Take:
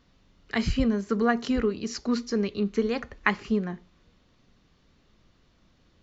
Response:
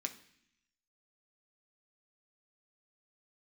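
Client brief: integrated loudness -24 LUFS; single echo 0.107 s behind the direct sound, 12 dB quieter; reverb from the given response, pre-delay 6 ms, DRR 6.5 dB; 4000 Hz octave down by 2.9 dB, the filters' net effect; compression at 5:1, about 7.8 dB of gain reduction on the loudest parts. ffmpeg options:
-filter_complex "[0:a]equalizer=f=4k:t=o:g=-4,acompressor=threshold=-28dB:ratio=5,aecho=1:1:107:0.251,asplit=2[a][b];[1:a]atrim=start_sample=2205,adelay=6[c];[b][c]afir=irnorm=-1:irlink=0,volume=-6dB[d];[a][d]amix=inputs=2:normalize=0,volume=8.5dB"

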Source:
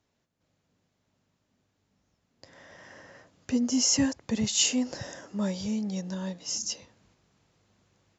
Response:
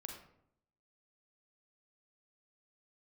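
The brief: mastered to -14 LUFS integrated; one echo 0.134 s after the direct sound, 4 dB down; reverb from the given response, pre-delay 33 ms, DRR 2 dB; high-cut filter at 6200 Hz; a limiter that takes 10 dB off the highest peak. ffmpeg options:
-filter_complex "[0:a]lowpass=6.2k,alimiter=limit=-21dB:level=0:latency=1,aecho=1:1:134:0.631,asplit=2[a][b];[1:a]atrim=start_sample=2205,adelay=33[c];[b][c]afir=irnorm=-1:irlink=0,volume=1.5dB[d];[a][d]amix=inputs=2:normalize=0,volume=13.5dB"

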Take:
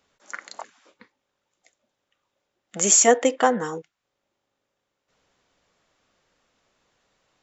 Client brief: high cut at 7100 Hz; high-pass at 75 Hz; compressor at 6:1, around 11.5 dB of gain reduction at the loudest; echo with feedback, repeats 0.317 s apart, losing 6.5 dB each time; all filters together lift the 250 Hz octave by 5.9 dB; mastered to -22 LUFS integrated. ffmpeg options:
-af "highpass=75,lowpass=7.1k,equalizer=f=250:t=o:g=6.5,acompressor=threshold=-22dB:ratio=6,aecho=1:1:317|634|951|1268|1585|1902:0.473|0.222|0.105|0.0491|0.0231|0.0109,volume=6.5dB"

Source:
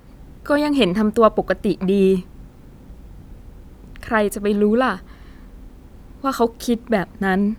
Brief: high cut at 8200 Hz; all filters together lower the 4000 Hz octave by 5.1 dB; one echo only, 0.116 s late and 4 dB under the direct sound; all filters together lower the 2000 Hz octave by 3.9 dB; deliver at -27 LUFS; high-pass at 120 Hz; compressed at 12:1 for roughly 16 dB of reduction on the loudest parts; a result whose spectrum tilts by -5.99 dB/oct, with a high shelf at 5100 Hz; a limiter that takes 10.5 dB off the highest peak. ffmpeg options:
-af "highpass=120,lowpass=8.2k,equalizer=f=2k:t=o:g=-4.5,equalizer=f=4k:t=o:g=-7.5,highshelf=f=5.1k:g=6,acompressor=threshold=-24dB:ratio=12,alimiter=level_in=1.5dB:limit=-24dB:level=0:latency=1,volume=-1.5dB,aecho=1:1:116:0.631,volume=6.5dB"

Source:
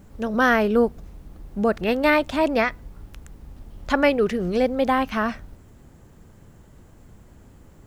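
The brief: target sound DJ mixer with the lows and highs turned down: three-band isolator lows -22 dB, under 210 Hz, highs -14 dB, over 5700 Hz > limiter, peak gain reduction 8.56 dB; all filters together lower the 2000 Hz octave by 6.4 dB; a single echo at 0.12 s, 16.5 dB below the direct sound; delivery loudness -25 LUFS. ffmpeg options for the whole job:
-filter_complex "[0:a]acrossover=split=210 5700:gain=0.0794 1 0.2[a][b][c];[a][b][c]amix=inputs=3:normalize=0,equalizer=f=2k:t=o:g=-8.5,aecho=1:1:120:0.15,volume=2dB,alimiter=limit=-13.5dB:level=0:latency=1"

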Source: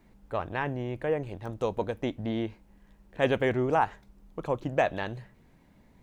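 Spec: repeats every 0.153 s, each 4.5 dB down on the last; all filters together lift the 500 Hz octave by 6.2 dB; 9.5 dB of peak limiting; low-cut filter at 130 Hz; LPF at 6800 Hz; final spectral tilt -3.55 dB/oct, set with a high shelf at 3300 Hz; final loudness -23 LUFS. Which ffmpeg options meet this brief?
-af "highpass=130,lowpass=6.8k,equalizer=f=500:t=o:g=7.5,highshelf=f=3.3k:g=-6.5,alimiter=limit=-16dB:level=0:latency=1,aecho=1:1:153|306|459|612|765|918|1071|1224|1377:0.596|0.357|0.214|0.129|0.0772|0.0463|0.0278|0.0167|0.01,volume=5dB"

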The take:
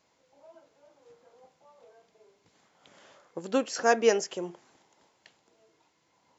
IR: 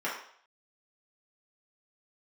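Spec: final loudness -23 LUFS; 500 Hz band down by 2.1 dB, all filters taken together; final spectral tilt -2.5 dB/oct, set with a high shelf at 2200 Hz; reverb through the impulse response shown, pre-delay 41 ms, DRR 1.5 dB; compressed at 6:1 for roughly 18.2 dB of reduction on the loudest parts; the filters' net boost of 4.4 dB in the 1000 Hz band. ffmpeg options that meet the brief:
-filter_complex "[0:a]equalizer=f=500:t=o:g=-5,equalizer=f=1k:t=o:g=8.5,highshelf=f=2.2k:g=4,acompressor=threshold=-34dB:ratio=6,asplit=2[a][b];[1:a]atrim=start_sample=2205,adelay=41[c];[b][c]afir=irnorm=-1:irlink=0,volume=-10dB[d];[a][d]amix=inputs=2:normalize=0,volume=16.5dB"

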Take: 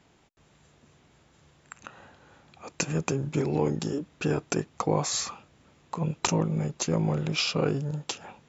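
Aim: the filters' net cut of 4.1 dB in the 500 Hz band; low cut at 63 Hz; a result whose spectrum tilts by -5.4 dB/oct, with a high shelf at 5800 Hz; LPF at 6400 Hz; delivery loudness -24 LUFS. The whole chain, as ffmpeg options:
-af "highpass=63,lowpass=6.4k,equalizer=f=500:t=o:g=-5,highshelf=f=5.8k:g=-6,volume=6.5dB"

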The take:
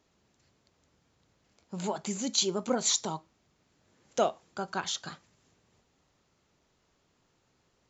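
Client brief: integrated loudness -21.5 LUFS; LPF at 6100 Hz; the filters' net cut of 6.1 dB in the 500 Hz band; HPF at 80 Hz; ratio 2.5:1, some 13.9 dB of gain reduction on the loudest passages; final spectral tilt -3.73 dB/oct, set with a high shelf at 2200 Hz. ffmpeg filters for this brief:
-af "highpass=80,lowpass=6.1k,equalizer=f=500:t=o:g=-7.5,highshelf=f=2.2k:g=-8.5,acompressor=threshold=-48dB:ratio=2.5,volume=26.5dB"

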